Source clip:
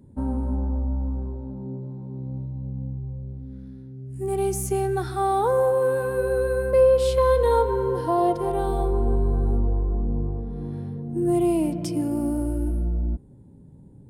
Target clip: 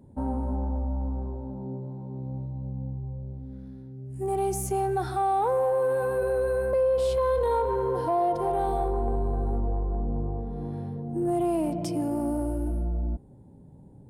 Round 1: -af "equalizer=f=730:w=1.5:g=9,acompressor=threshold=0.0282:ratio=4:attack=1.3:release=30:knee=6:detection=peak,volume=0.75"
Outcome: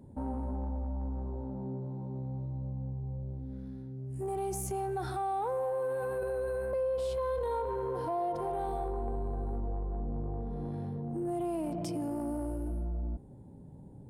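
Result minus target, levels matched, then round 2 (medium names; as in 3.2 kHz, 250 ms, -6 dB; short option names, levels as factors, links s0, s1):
compression: peak gain reduction +8 dB
-af "equalizer=f=730:w=1.5:g=9,acompressor=threshold=0.1:ratio=4:attack=1.3:release=30:knee=6:detection=peak,volume=0.75"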